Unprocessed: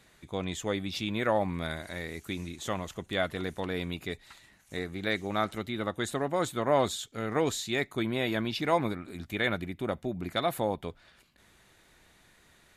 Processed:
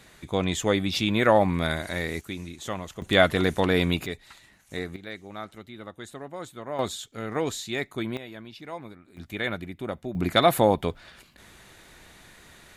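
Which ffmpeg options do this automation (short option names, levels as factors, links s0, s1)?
-af "asetnsamples=n=441:p=0,asendcmd='2.21 volume volume 0.5dB;3.02 volume volume 11dB;4.06 volume volume 2.5dB;4.96 volume volume -8.5dB;6.79 volume volume 0dB;8.17 volume volume -11.5dB;9.17 volume volume -0.5dB;10.15 volume volume 10dB',volume=2.51"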